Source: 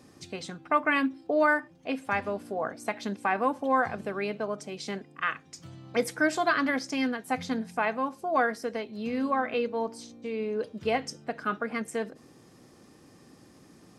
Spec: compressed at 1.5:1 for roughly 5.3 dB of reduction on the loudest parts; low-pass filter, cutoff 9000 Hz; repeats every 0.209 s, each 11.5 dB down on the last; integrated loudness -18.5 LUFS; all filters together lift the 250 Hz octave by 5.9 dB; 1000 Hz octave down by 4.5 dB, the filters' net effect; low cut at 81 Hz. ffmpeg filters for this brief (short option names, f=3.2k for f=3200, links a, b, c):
-af "highpass=81,lowpass=9k,equalizer=f=250:t=o:g=7,equalizer=f=1k:t=o:g=-6.5,acompressor=threshold=-32dB:ratio=1.5,aecho=1:1:209|418|627:0.266|0.0718|0.0194,volume=13.5dB"